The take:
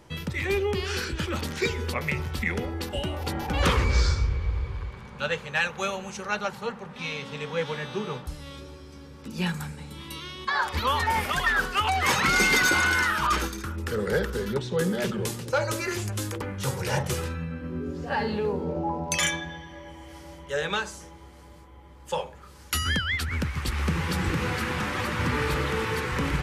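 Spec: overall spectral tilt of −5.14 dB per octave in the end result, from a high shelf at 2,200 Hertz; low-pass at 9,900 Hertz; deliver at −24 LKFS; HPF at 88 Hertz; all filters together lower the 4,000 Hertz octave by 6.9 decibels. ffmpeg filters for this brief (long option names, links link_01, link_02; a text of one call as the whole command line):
ffmpeg -i in.wav -af "highpass=88,lowpass=9900,highshelf=frequency=2200:gain=-6,equalizer=frequency=4000:width_type=o:gain=-3.5,volume=5.5dB" out.wav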